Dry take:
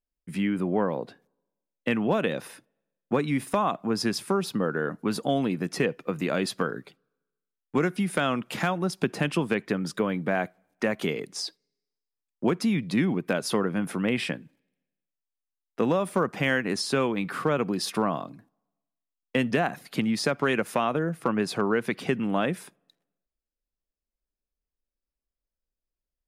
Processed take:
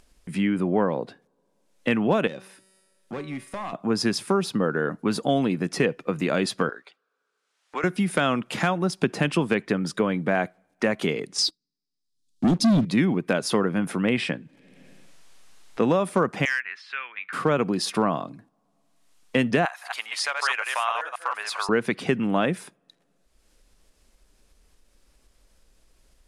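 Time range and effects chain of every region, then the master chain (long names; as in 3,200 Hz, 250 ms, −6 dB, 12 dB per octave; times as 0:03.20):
0:02.27–0:03.73: gain into a clipping stage and back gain 21 dB + tuned comb filter 190 Hz, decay 0.73 s, mix 70% + one half of a high-frequency compander encoder only
0:06.69–0:07.84: high-pass filter 770 Hz + high-frequency loss of the air 63 metres
0:11.38–0:12.85: Chebyshev band-stop filter 290–3,800 Hz, order 3 + high-shelf EQ 10,000 Hz −10 dB + leveller curve on the samples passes 3
0:14.16–0:15.81: high-shelf EQ 8,700 Hz −8 dB + upward compression, threshold −44 dBFS
0:16.45–0:17.33: flat-topped band-pass 2,000 Hz, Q 1.5 + gain into a clipping stage and back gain 21 dB
0:19.65–0:21.69: delay that plays each chunk backwards 137 ms, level −3 dB + high-pass filter 840 Hz 24 dB per octave
whole clip: low-pass filter 11,000 Hz 24 dB per octave; upward compression, threshold −40 dBFS; level +3 dB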